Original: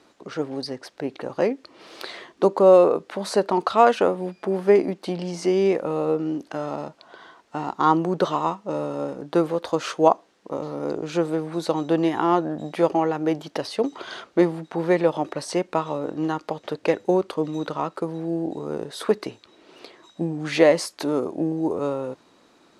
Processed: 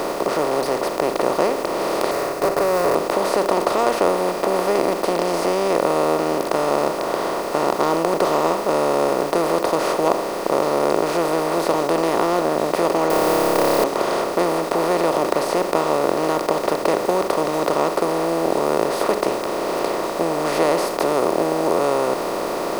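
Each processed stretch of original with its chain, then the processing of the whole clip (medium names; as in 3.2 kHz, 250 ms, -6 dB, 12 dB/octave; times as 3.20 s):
2.11–2.95 s: comb filter that takes the minimum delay 7.1 ms + high-pass 73 Hz + static phaser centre 880 Hz, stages 6
13.10–13.84 s: send-on-delta sampling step -30 dBFS + treble shelf 7.3 kHz +8 dB + flutter echo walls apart 5 m, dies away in 1.5 s
whole clip: spectral levelling over time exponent 0.2; treble shelf 7.2 kHz +7 dB; trim -9 dB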